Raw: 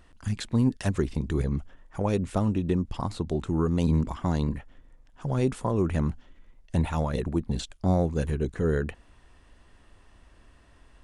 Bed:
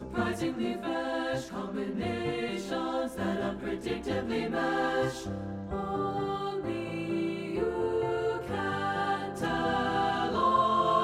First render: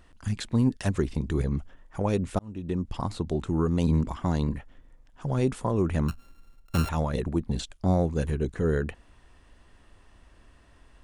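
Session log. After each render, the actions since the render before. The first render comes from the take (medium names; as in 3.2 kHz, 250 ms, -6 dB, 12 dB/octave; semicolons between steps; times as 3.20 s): 2.39–2.93 s: fade in linear; 6.08–6.89 s: sorted samples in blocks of 32 samples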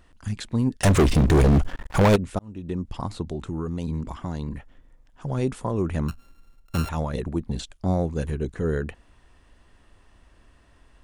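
0.83–2.16 s: waveshaping leveller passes 5; 3.29–4.52 s: compression 2:1, threshold -28 dBFS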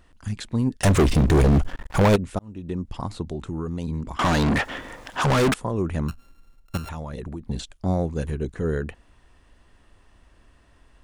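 4.19–5.54 s: overdrive pedal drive 39 dB, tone 5.2 kHz, clips at -12.5 dBFS; 6.77–7.46 s: compression, threshold -29 dBFS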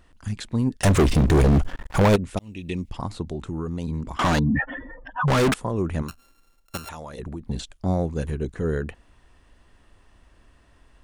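2.37–2.90 s: resonant high shelf 1.8 kHz +9 dB, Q 3; 4.39–5.28 s: spectral contrast enhancement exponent 2.9; 6.02–7.19 s: tone controls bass -10 dB, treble +5 dB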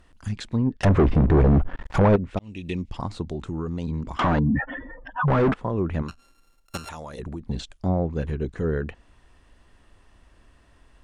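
low-pass that closes with the level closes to 1.5 kHz, closed at -18 dBFS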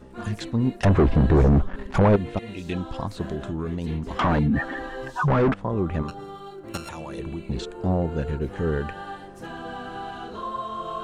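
add bed -6.5 dB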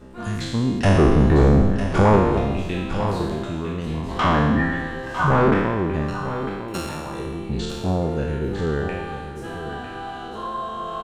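spectral sustain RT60 1.30 s; delay 952 ms -10.5 dB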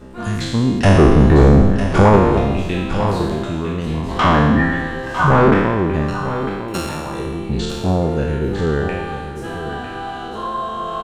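trim +5 dB; peak limiter -2 dBFS, peak gain reduction 2 dB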